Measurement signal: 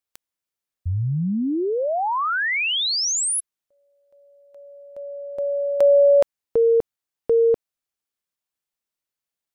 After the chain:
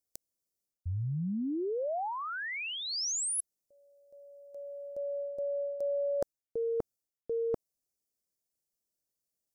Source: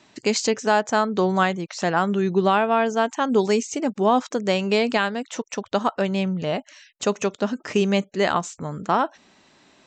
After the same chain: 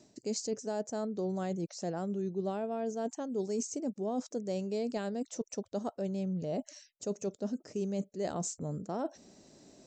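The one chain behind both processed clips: high-order bell 1.8 kHz -15.5 dB 2.4 oct; reverse; compression 5:1, threshold -35 dBFS; reverse; trim +1.5 dB

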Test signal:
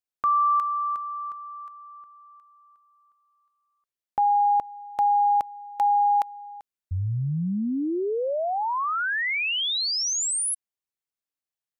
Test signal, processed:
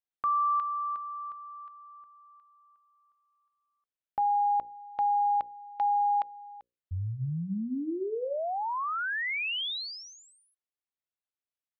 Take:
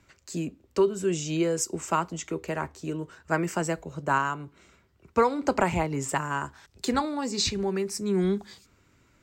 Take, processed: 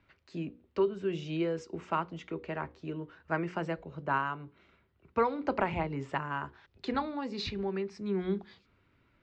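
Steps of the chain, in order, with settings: low-pass 3.8 kHz 24 dB/octave; hum notches 60/120/180/240/300/360/420/480/540 Hz; trim -5.5 dB

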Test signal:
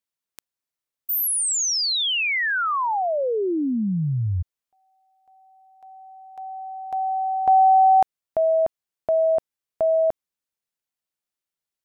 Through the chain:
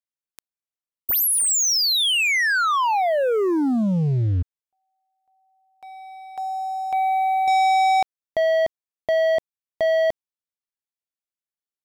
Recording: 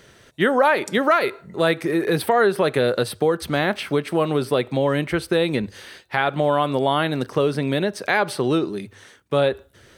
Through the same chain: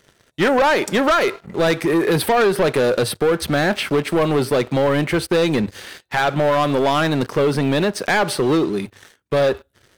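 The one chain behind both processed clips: waveshaping leveller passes 3; trim -4.5 dB

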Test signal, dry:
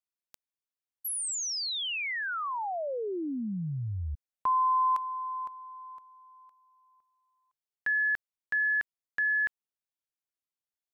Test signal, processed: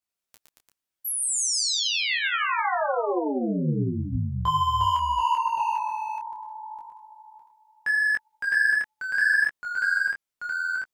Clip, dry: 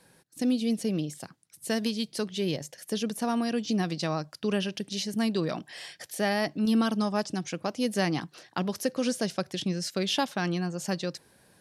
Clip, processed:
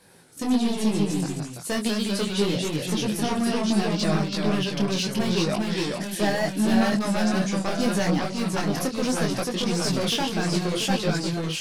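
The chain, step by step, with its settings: hard clipper -25.5 dBFS; ever faster or slower copies 93 ms, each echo -1 st, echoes 3; detune thickener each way 25 cents; trim +8.5 dB

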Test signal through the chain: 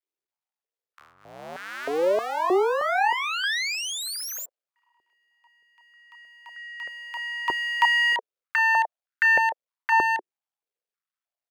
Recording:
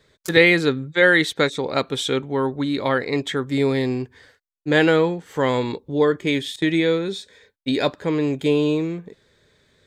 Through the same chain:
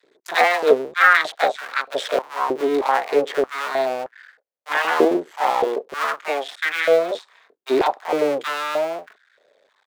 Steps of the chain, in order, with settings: cycle switcher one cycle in 2, muted; treble shelf 4.4 kHz -9.5 dB; bands offset in time highs, lows 30 ms, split 970 Hz; step-sequenced high-pass 3.2 Hz 370–1500 Hz; trim +1.5 dB

